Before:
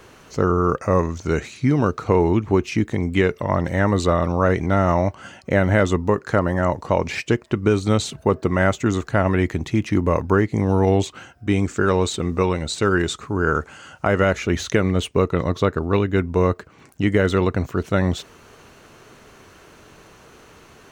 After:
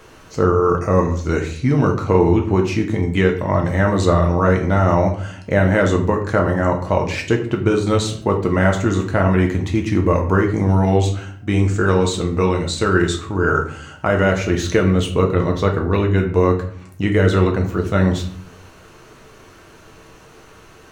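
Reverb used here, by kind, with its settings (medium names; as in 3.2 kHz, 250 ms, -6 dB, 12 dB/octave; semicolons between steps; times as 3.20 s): simulated room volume 65 m³, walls mixed, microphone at 0.59 m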